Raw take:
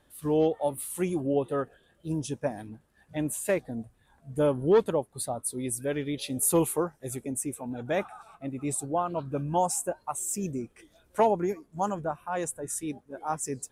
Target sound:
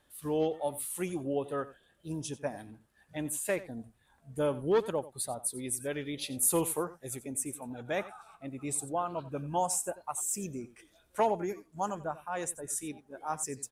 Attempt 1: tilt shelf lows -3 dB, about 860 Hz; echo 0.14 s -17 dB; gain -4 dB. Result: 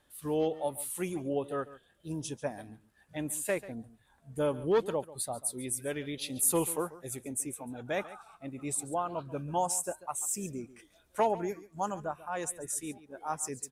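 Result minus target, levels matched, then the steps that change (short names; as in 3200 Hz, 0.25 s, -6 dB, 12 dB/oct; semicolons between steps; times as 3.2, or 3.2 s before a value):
echo 50 ms late
change: echo 90 ms -17 dB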